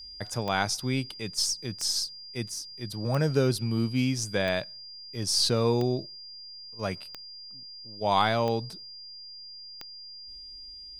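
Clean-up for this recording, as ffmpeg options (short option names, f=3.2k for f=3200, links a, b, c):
-af "adeclick=t=4,bandreject=f=4.8k:w=30"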